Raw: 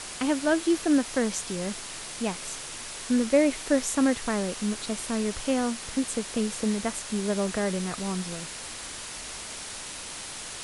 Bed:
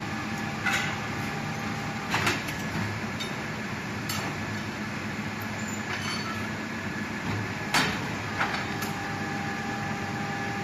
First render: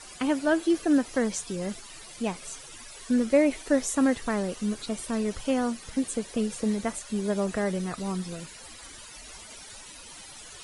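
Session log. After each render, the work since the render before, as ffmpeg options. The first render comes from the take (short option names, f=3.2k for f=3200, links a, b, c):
-af "afftdn=nr=14:nf=-39"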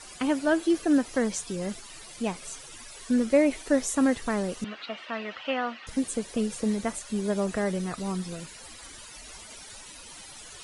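-filter_complex "[0:a]asettb=1/sr,asplit=3[a][b][c];[a]atrim=end=4.644[d];[b]atrim=start=4.64:end=5.87,asetpts=PTS-STARTPTS,afade=t=in:d=0.004:c=qsin,afade=t=out:st=1.226:d=0.004:c=qsin,highpass=400,equalizer=f=410:t=q:w=4:g=-8,equalizer=f=690:t=q:w=4:g=3,equalizer=f=1.3k:t=q:w=4:g=6,equalizer=f=1.9k:t=q:w=4:g=7,equalizer=f=2.8k:t=q:w=4:g=8,lowpass=f=3.9k:w=0.5412,lowpass=f=3.9k:w=1.3066[e];[c]atrim=start=5.866[f];[d][e]acrossfade=d=0.004:c1=hsin:c2=qsin[g];[g][f]acrossfade=d=0.004:c1=qsin:c2=hsin"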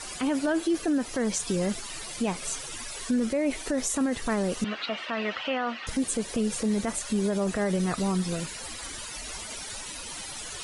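-filter_complex "[0:a]asplit=2[a][b];[b]acompressor=threshold=-31dB:ratio=6,volume=2dB[c];[a][c]amix=inputs=2:normalize=0,alimiter=limit=-18.5dB:level=0:latency=1:release=22"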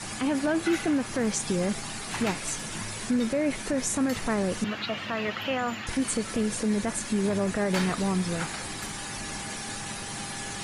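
-filter_complex "[1:a]volume=-8dB[a];[0:a][a]amix=inputs=2:normalize=0"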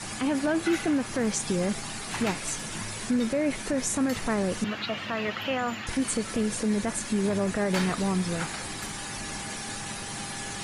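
-af anull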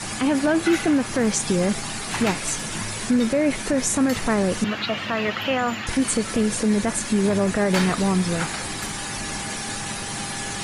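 -af "volume=6dB"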